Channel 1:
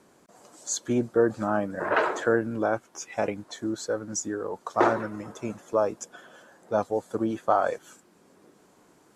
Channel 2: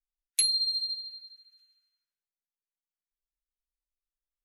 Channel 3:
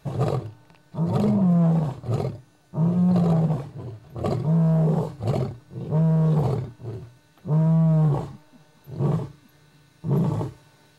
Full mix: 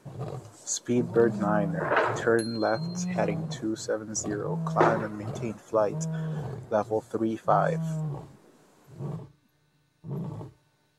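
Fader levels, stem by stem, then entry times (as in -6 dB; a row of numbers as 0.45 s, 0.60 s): -0.5 dB, -16.0 dB, -12.5 dB; 0.00 s, 2.00 s, 0.00 s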